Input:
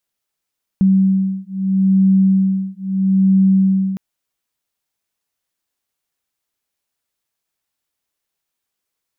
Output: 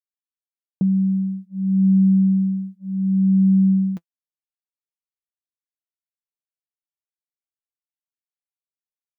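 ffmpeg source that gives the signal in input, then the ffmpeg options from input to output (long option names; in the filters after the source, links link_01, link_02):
-f lavfi -i "aevalsrc='0.188*(sin(2*PI*191*t)+sin(2*PI*191.77*t))':duration=3.16:sample_rate=44100"
-af "agate=range=-33dB:threshold=-24dB:ratio=3:detection=peak,flanger=delay=5.6:depth=1:regen=47:speed=0.54:shape=triangular"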